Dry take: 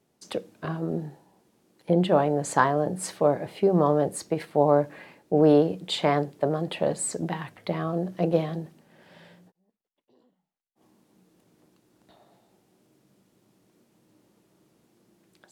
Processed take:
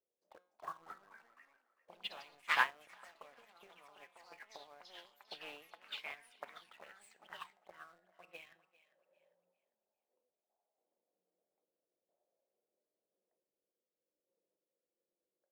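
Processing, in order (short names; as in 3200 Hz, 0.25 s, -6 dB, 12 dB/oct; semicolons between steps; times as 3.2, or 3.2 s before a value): HPF 88 Hz 6 dB/oct; tilt shelf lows -3.5 dB, about 1100 Hz; auto-wah 500–2500 Hz, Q 6.1, up, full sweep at -24 dBFS; in parallel at -4 dB: bit-crush 8-bit; on the sum: high shelf 4800 Hz -5 dB; resonator 180 Hz, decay 0.54 s, harmonics all, mix 60%; random-step tremolo 3.5 Hz; echoes that change speed 0.331 s, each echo +3 st, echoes 3; on a send: thinning echo 0.399 s, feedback 31%, high-pass 420 Hz, level -15 dB; on the sum: upward expander 2.5:1, over -53 dBFS; gain +15 dB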